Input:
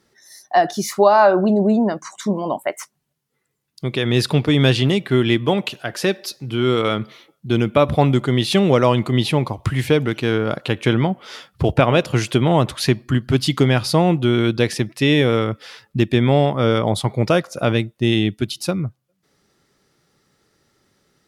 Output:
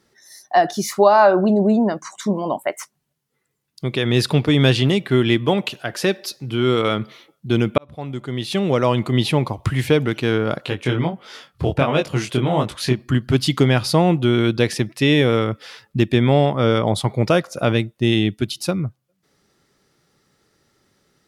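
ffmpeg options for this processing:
ffmpeg -i in.wav -filter_complex "[0:a]asplit=3[link_01][link_02][link_03];[link_01]afade=type=out:start_time=10.65:duration=0.02[link_04];[link_02]flanger=delay=19.5:depth=5.2:speed=1.5,afade=type=in:start_time=10.65:duration=0.02,afade=type=out:start_time=12.98:duration=0.02[link_05];[link_03]afade=type=in:start_time=12.98:duration=0.02[link_06];[link_04][link_05][link_06]amix=inputs=3:normalize=0,asettb=1/sr,asplit=3[link_07][link_08][link_09];[link_07]atrim=end=16.344[link_10];[link_08]atrim=start=16.34:end=16.98,asetpts=PTS-STARTPTS,afade=type=in:duration=0.004:curve=qsin,afade=type=out:start_time=0.636:duration=0.004:curve=qsin,lowpass=11000[link_11];[link_09]atrim=start=16.976[link_12];[link_10][link_11]acrossfade=duration=0.004:curve1=hsin:curve2=qsin[link_13];[link_13][link_12]acrossfade=duration=0.004:curve1=qsin:curve2=hsin,asplit=2[link_14][link_15];[link_14]atrim=end=7.78,asetpts=PTS-STARTPTS,afade=type=out:start_time=7.776:duration=0.004:curve=hsin[link_16];[link_15]atrim=start=7.78,asetpts=PTS-STARTPTS,afade=type=in:duration=1.43[link_17];[link_16][link_17]concat=n=2:v=0:a=1" out.wav

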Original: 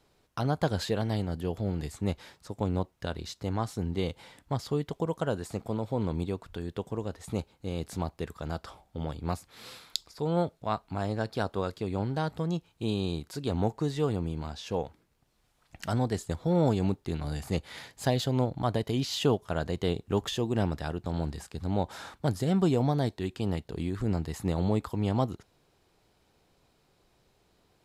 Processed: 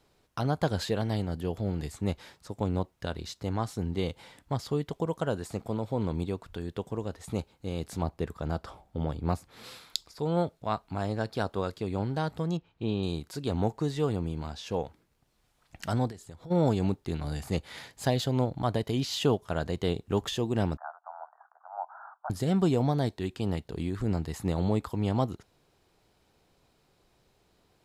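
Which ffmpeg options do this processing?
ffmpeg -i in.wav -filter_complex "[0:a]asettb=1/sr,asplit=3[link_01][link_02][link_03];[link_01]atrim=end=8.024[link_04];[link_02]atrim=start=8.02:end=9.64,asetpts=PTS-STARTPTS,afade=type=in:duration=0.004:curve=qsin,afade=type=out:start_time=1.616:duration=0.004:curve=qsin,tiltshelf=frequency=1500:gain=3.5[link_05];[link_03]atrim=start=9.636[link_06];[link_04][link_05]acrossfade=duration=0.004:curve1=hsin:curve2=qsin[link_07];[link_07][link_06]acrossfade=duration=0.004:curve1=qsin:curve2=hsin,asettb=1/sr,asplit=3[link_08][link_09][link_10];[link_08]atrim=end=12.574[link_11];[link_09]atrim=start=12.57:end=13.03,asetpts=PTS-STARTPTS,afade=type=in:duration=0.004:curve=qsin,afade=type=out:start_time=0.456:duration=0.004:curve=qsin,lowpass=3100[link_12];[link_10]atrim=start=13.026[link_13];[link_11][link_12]acrossfade=duration=0.004:curve1=hsin:curve2=qsin[link_14];[link_14][link_13]acrossfade=duration=0.004:curve1=qsin:curve2=hsin,asplit=3[link_15][link_16][link_17];[link_15]afade=type=out:start_time=16.1:duration=0.02[link_18];[link_16]acompressor=threshold=-44dB:ratio=4:attack=3.2:release=140:knee=1:detection=peak,afade=type=in:start_time=16.1:duration=0.02,afade=type=out:start_time=16.5:duration=0.02[link_19];[link_17]afade=type=in:start_time=16.5:duration=0.02[link_20];[link_18][link_19][link_20]amix=inputs=3:normalize=0,asettb=1/sr,asplit=3[link_21][link_22][link_23];[link_21]atrim=end=20.774[link_24];[link_22]atrim=start=20.77:end=22.3,asetpts=PTS-STARTPTS,afade=type=in:duration=0.004:curve=qsin,afade=type=out:start_time=1.526:duration=0.004:curve=qsin,asuperpass=centerf=1000:order=12:qfactor=1.2[link_25];[link_23]atrim=start=22.296[link_26];[link_24][link_25]acrossfade=duration=0.004:curve1=hsin:curve2=qsin[link_27];[link_27][link_26]acrossfade=duration=0.004:curve1=qsin:curve2=hsin" out.wav

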